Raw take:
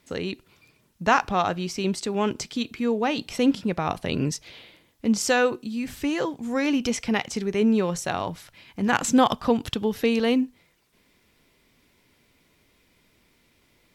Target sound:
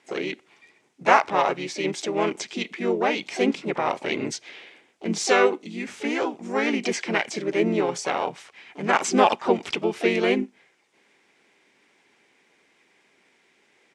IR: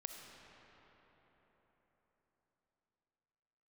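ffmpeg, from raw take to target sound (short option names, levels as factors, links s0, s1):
-filter_complex "[0:a]asplit=4[s0][s1][s2][s3];[s1]asetrate=35002,aresample=44100,atempo=1.25992,volume=0.891[s4];[s2]asetrate=58866,aresample=44100,atempo=0.749154,volume=0.158[s5];[s3]asetrate=66075,aresample=44100,atempo=0.66742,volume=0.2[s6];[s0][s4][s5][s6]amix=inputs=4:normalize=0,highpass=300,equalizer=f=390:t=q:w=4:g=4,equalizer=f=840:t=q:w=4:g=4,equalizer=f=2200:t=q:w=4:g=6,equalizer=f=4300:t=q:w=4:g=-4,lowpass=f=8500:w=0.5412,lowpass=f=8500:w=1.3066,volume=0.841"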